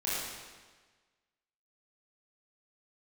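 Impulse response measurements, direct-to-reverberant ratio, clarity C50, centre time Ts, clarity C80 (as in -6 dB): -9.5 dB, -3.0 dB, 109 ms, -0.5 dB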